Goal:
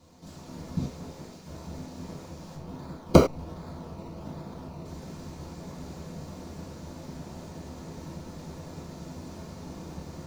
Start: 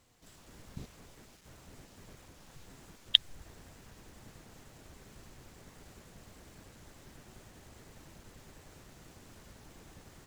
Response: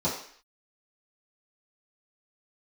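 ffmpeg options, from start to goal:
-filter_complex "[0:a]asplit=3[a][b][c];[a]afade=t=out:st=2.54:d=0.02[d];[b]acrusher=samples=21:mix=1:aa=0.000001:lfo=1:lforange=12.6:lforate=1.3,afade=t=in:st=2.54:d=0.02,afade=t=out:st=4.84:d=0.02[e];[c]afade=t=in:st=4.84:d=0.02[f];[d][e][f]amix=inputs=3:normalize=0[g];[1:a]atrim=start_sample=2205,afade=t=out:st=0.16:d=0.01,atrim=end_sample=7497[h];[g][h]afir=irnorm=-1:irlink=0"

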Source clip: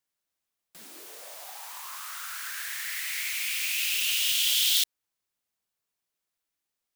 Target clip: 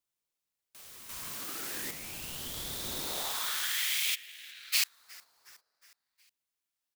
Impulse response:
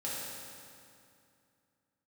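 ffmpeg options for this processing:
-filter_complex "[0:a]lowshelf=f=430:g=-11.5,asettb=1/sr,asplit=3[a][b][c];[a]atrim=end=1.094[d];[b]atrim=start=1.09:end=1.91,asetpts=PTS-STARTPTS,afade=t=in:d=0.004:c=qsin,afade=t=out:st=0.816:d=0.004:c=qsin,acontrast=69[e];[c]atrim=start=1.906[f];[d][e]acrossfade=d=0.004:c1=hsin:c2=qsin[g];[g][f]acrossfade=d=0.004:c1=qsin:c2=hsin,asplit=3[h][i][j];[h]afade=t=out:st=4.14:d=0.02[k];[i]asplit=3[l][m][n];[l]bandpass=f=300:t=q:w=8,volume=0dB[o];[m]bandpass=f=870:t=q:w=8,volume=-6dB[p];[n]bandpass=f=2.24k:t=q:w=8,volume=-9dB[q];[o][p][q]amix=inputs=3:normalize=0,afade=t=in:st=4.14:d=0.02,afade=t=out:st=4.72:d=0.02[r];[j]afade=t=in:st=4.72:d=0.02[s];[k][r][s]amix=inputs=3:normalize=0,asplit=2[t][u];[u]aecho=0:1:364|728|1092|1456:0.0708|0.0389|0.0214|0.0118[v];[t][v]amix=inputs=2:normalize=0,aeval=exprs='val(0)*sin(2*PI*1100*n/s+1100*0.6/0.36*sin(2*PI*0.36*n/s))':c=same"

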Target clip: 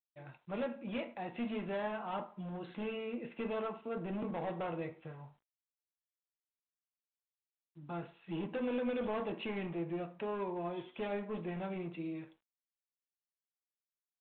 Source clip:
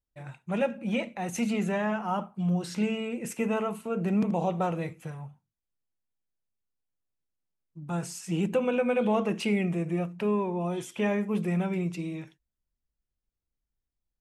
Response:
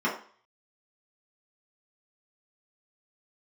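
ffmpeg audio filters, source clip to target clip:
-filter_complex "[0:a]equalizer=f=74:w=0.68:g=-6.5,asoftclip=type=hard:threshold=-27dB,asplit=2[a][b];[1:a]atrim=start_sample=2205,lowshelf=f=210:g=-6.5[c];[b][c]afir=irnorm=-1:irlink=0,volume=-18dB[d];[a][d]amix=inputs=2:normalize=0,volume=-7dB" -ar 8000 -c:a adpcm_g726 -b:a 40k

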